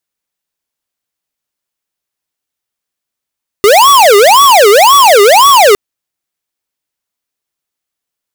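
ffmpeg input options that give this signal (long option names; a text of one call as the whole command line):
ffmpeg -f lavfi -i "aevalsrc='0.631*(2*lt(mod((769.5*t-370.5/(2*PI*1.9)*sin(2*PI*1.9*t)),1),0.5)-1)':duration=2.11:sample_rate=44100" out.wav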